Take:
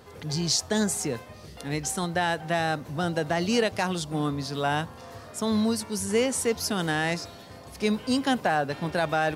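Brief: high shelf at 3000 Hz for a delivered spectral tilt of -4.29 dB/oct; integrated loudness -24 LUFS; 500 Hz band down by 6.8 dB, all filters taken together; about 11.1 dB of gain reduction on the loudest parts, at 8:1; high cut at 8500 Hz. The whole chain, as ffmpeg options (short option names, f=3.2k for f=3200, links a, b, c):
-af "lowpass=8.5k,equalizer=f=500:t=o:g=-8.5,highshelf=f=3k:g=-4,acompressor=threshold=-35dB:ratio=8,volume=15.5dB"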